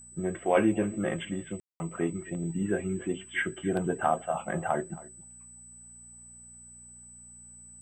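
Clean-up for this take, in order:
hum removal 59.7 Hz, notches 4
notch filter 8,000 Hz, Q 30
ambience match 0:01.60–0:01.80
echo removal 272 ms −20 dB

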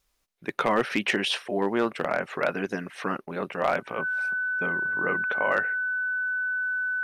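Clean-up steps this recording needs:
clipped peaks rebuilt −14 dBFS
notch filter 1,500 Hz, Q 30

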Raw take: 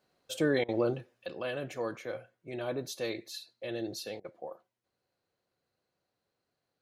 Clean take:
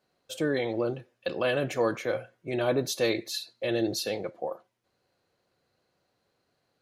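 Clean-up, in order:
repair the gap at 0:00.64/0:04.20, 44 ms
level 0 dB, from 0:01.26 +9 dB

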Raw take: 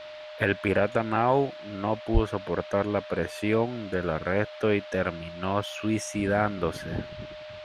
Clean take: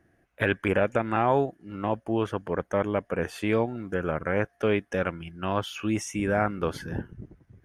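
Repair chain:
notch filter 610 Hz, Q 30
0:02.13–0:02.25: high-pass filter 140 Hz 24 dB per octave
noise reduction from a noise print 22 dB

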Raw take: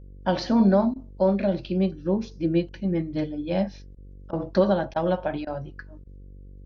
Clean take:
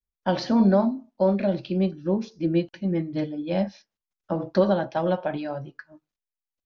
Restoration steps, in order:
hum removal 47.9 Hz, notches 11
repair the gap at 0:00.94/0:03.95/0:04.31/0:04.94/0:05.45/0:06.04, 18 ms

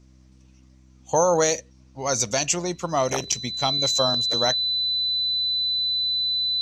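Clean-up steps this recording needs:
hum removal 64.3 Hz, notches 5
notch filter 4,000 Hz, Q 30

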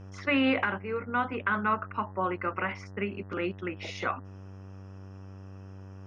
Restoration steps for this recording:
hum removal 96.1 Hz, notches 20

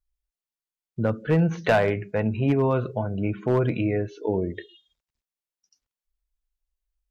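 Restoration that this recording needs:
clipped peaks rebuilt −13 dBFS

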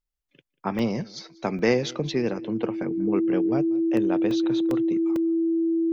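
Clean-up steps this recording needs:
notch filter 330 Hz, Q 30
repair the gap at 0:00.79/0:01.59/0:03.97/0:04.31/0:04.71/0:05.16, 2 ms
echo removal 190 ms −22.5 dB

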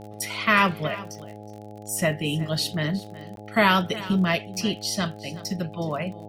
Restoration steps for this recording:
click removal
hum removal 105 Hz, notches 8
repair the gap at 0:03.36, 12 ms
echo removal 368 ms −17.5 dB

